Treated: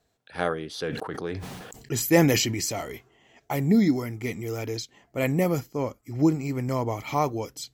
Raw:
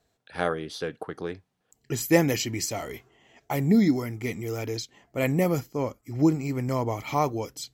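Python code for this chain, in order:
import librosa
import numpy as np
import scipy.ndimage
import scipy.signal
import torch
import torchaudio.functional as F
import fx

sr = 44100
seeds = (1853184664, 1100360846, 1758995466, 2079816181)

y = fx.sustainer(x, sr, db_per_s=35.0, at=(0.77, 2.81), fade=0.02)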